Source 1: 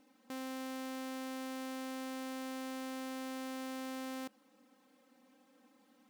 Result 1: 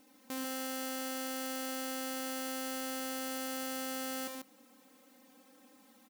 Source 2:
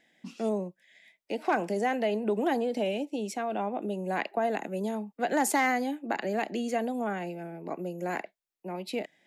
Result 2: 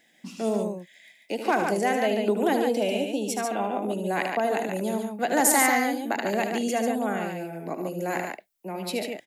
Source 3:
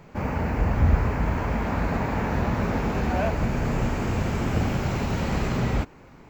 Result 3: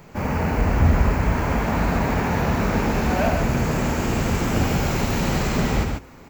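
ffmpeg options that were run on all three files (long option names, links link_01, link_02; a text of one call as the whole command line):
ffmpeg -i in.wav -af "crystalizer=i=1.5:c=0,bandreject=frequency=60:width_type=h:width=6,bandreject=frequency=120:width_type=h:width=6,aecho=1:1:75.8|142.9:0.398|0.562,volume=2.5dB" out.wav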